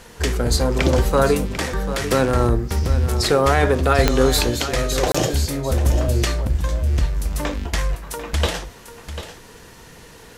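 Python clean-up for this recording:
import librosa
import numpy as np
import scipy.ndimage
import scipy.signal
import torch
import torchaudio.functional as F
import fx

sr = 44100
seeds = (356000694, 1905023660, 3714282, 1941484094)

y = fx.fix_declick_ar(x, sr, threshold=10.0)
y = fx.fix_interpolate(y, sr, at_s=(5.12,), length_ms=25.0)
y = fx.fix_echo_inverse(y, sr, delay_ms=744, level_db=-11.5)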